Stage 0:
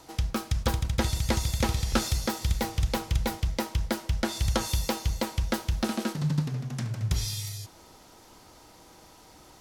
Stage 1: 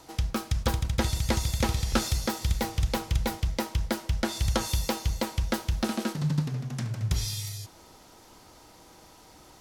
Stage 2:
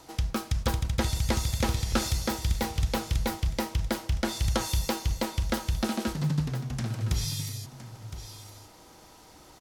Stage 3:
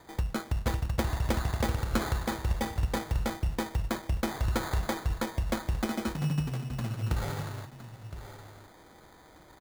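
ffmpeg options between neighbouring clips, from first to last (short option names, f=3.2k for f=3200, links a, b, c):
-af anull
-af "asoftclip=type=tanh:threshold=-13.5dB,aecho=1:1:1014:0.237"
-af "acrusher=samples=16:mix=1:aa=0.000001,volume=-2dB"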